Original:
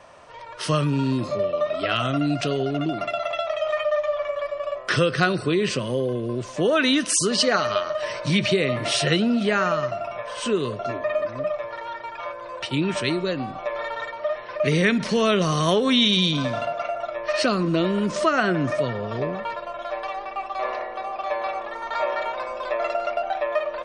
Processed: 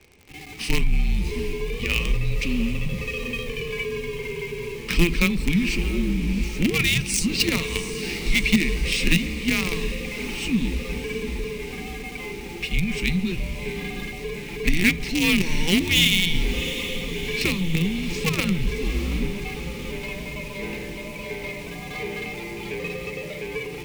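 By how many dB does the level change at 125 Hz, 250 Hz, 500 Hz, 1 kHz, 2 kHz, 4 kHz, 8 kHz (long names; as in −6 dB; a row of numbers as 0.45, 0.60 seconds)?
+0.5, −0.5, −8.0, −13.5, +2.5, +0.5, 0.0 decibels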